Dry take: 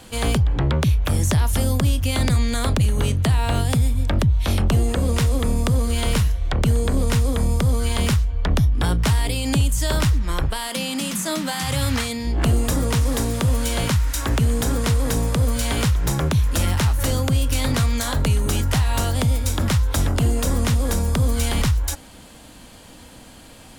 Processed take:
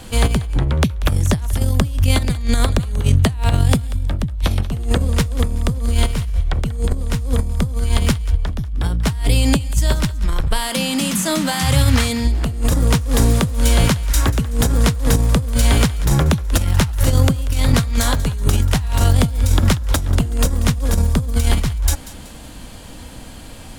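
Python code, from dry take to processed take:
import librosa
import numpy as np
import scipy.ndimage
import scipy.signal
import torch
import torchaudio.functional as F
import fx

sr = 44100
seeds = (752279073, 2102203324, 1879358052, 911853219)

y = fx.low_shelf(x, sr, hz=110.0, db=9.0)
y = fx.over_compress(y, sr, threshold_db=-16.0, ratio=-0.5)
y = fx.echo_thinned(y, sr, ms=188, feedback_pct=37, hz=670.0, wet_db=-16.0)
y = F.gain(torch.from_numpy(y), 1.0).numpy()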